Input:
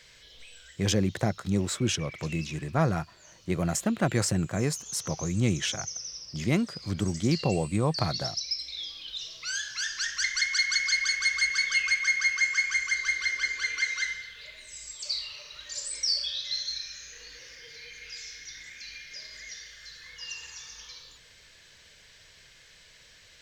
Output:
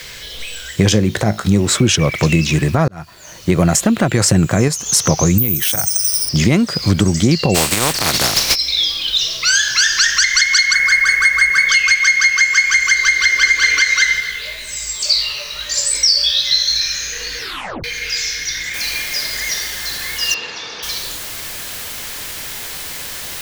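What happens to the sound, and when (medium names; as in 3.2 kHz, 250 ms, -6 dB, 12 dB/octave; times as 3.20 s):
0.89–1.75 s: feedback comb 53 Hz, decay 0.24 s, mix 50%
2.88–3.60 s: fade in
4.16–4.68 s: gain +4.5 dB
5.38–6.29 s: careless resampling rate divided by 3×, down filtered, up zero stuff
7.54–8.54 s: spectral contrast reduction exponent 0.3
10.73–11.69 s: high-order bell 4.4 kHz -13 dB
13.04–13.53 s: echo throw 420 ms, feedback 30%, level -6 dB
14.20–16.81 s: chorus 1.8 Hz, delay 15.5 ms, depth 4.1 ms
17.38 s: tape stop 0.46 s
18.74 s: noise floor step -64 dB -50 dB
20.34–20.83 s: cabinet simulation 170–4200 Hz, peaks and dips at 450 Hz +8 dB, 1.8 kHz -5 dB, 2.9 kHz -4 dB
whole clip: compression, threshold -30 dBFS; loudness maximiser +22 dB; trim -1 dB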